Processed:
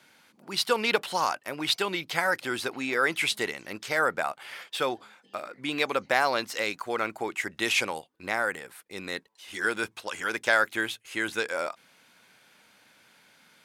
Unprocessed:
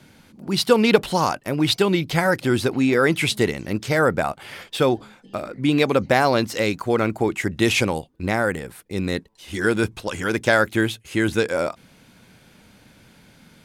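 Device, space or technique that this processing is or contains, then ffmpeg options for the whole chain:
filter by subtraction: -filter_complex "[0:a]asplit=2[link_01][link_02];[link_02]lowpass=1300,volume=-1[link_03];[link_01][link_03]amix=inputs=2:normalize=0,volume=-5dB"

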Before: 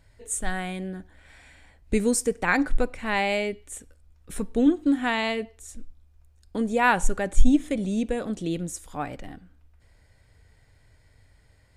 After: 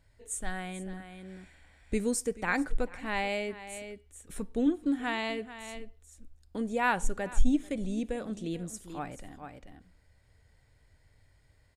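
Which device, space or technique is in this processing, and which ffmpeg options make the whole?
ducked delay: -filter_complex "[0:a]asplit=3[link_01][link_02][link_03];[link_02]adelay=435,volume=-5dB[link_04];[link_03]apad=whole_len=537814[link_05];[link_04][link_05]sidechaincompress=threshold=-38dB:ratio=4:attack=45:release=544[link_06];[link_01][link_06]amix=inputs=2:normalize=0,volume=-7dB"

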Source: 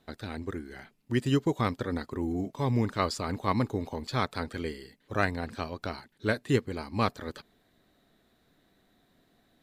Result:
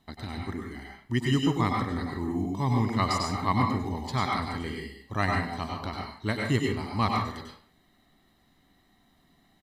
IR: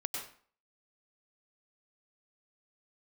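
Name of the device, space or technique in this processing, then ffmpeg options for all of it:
microphone above a desk: -filter_complex "[0:a]aecho=1:1:1:0.58[link_01];[1:a]atrim=start_sample=2205[link_02];[link_01][link_02]afir=irnorm=-1:irlink=0"

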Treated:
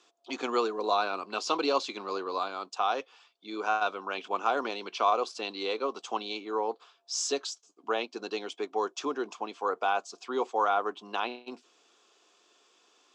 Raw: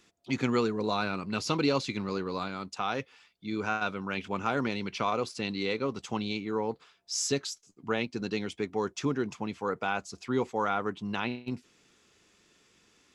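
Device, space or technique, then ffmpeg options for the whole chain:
phone speaker on a table: -af "highpass=frequency=330:width=0.5412,highpass=frequency=330:width=1.3066,equalizer=frequency=720:width_type=q:width=4:gain=7,equalizer=frequency=1100:width_type=q:width=4:gain=6,equalizer=frequency=2000:width_type=q:width=4:gain=-9,equalizer=frequency=3300:width_type=q:width=4:gain=3,lowpass=frequency=8100:width=0.5412,lowpass=frequency=8100:width=1.3066"

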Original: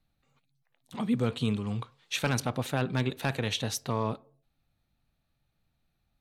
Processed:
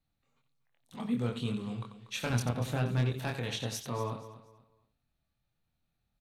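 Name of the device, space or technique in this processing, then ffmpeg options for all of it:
slapback doubling: -filter_complex "[0:a]asettb=1/sr,asplit=3[link_01][link_02][link_03];[link_01]atrim=end=2.304[link_04];[link_02]atrim=start=2.3:end=3.14,asetpts=PTS-STARTPTS,afade=type=in:duration=0.004:curve=qsin,afade=type=out:start_time=0.836:duration=0.004:curve=qsin,lowshelf=frequency=140:gain=11.5[link_05];[link_03]atrim=start=3.136[link_06];[link_04][link_05]acrossfade=duration=0.004:curve1=hsin:curve2=qsin[link_07];[link_07][link_06]acrossfade=duration=0.004:curve1=qsin:curve2=hsin,asplit=3[link_08][link_09][link_10];[link_09]adelay=25,volume=-3.5dB[link_11];[link_10]adelay=90,volume=-9.5dB[link_12];[link_08][link_11][link_12]amix=inputs=3:normalize=0,aecho=1:1:239|478|717:0.188|0.0527|0.0148,volume=-7dB"

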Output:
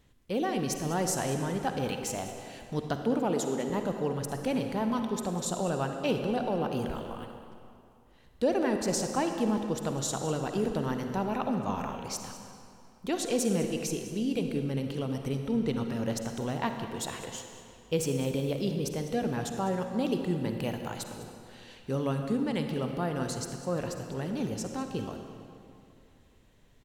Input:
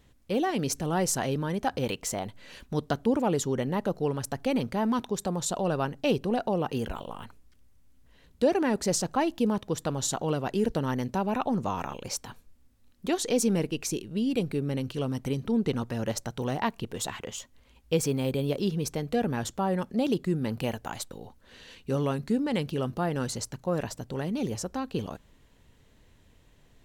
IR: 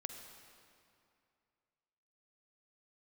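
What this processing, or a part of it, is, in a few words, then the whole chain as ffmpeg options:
cave: -filter_complex "[0:a]asettb=1/sr,asplit=3[link_01][link_02][link_03];[link_01]atrim=end=3.044[link_04];[link_02]atrim=start=3.04:end=3.7,asetpts=PTS-STARTPTS,afade=type=in:duration=0.004:curve=qsin,afade=type=out:start_time=0.656:duration=0.004:curve=qsin,highpass=frequency=160:width=0.5412,highpass=frequency=160:width=1.3066[link_05];[link_03]atrim=start=3.696[link_06];[link_04][link_05]acrossfade=duration=0.004:curve1=hsin:curve2=qsin[link_07];[link_07][link_06]acrossfade=duration=0.004:curve1=qsin:curve2=hsin,aecho=1:1:201:0.158[link_08];[1:a]atrim=start_sample=2205[link_09];[link_08][link_09]afir=irnorm=-1:irlink=0"

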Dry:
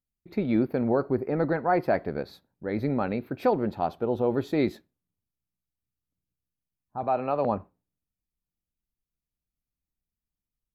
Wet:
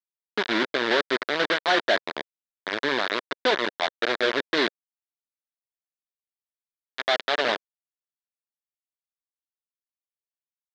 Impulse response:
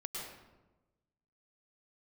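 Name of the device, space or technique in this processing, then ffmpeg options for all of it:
hand-held game console: -af "acrusher=bits=3:mix=0:aa=0.000001,highpass=480,equalizer=frequency=520:width_type=q:width=4:gain=-4,equalizer=frequency=800:width_type=q:width=4:gain=-9,equalizer=frequency=1200:width_type=q:width=4:gain=-4,equalizer=frequency=1700:width_type=q:width=4:gain=5,equalizer=frequency=2600:width_type=q:width=4:gain=-5,equalizer=frequency=3700:width_type=q:width=4:gain=5,lowpass=frequency=4200:width=0.5412,lowpass=frequency=4200:width=1.3066,volume=5.5dB"

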